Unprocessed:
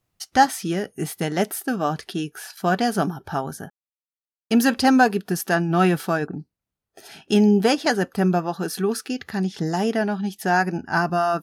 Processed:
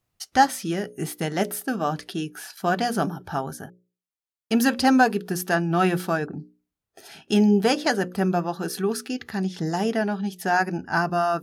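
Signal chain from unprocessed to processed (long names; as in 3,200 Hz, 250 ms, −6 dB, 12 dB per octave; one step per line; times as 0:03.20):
mains-hum notches 60/120/180/240/300/360/420/480/540/600 Hz
level −1.5 dB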